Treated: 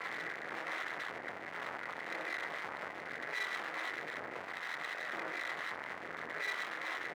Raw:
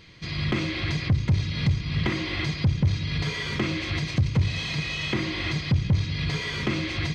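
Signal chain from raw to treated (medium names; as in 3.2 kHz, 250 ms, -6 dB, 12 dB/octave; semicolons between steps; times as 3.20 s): one-bit comparator; doubling 24 ms -4.5 dB; delay 470 ms -14 dB; rotary cabinet horn 1 Hz; peak limiter -21.5 dBFS, peak gain reduction 7.5 dB; Chebyshev low-pass 2 kHz, order 6; half-wave rectifier; high-pass 780 Hz 12 dB/octave; trim +4 dB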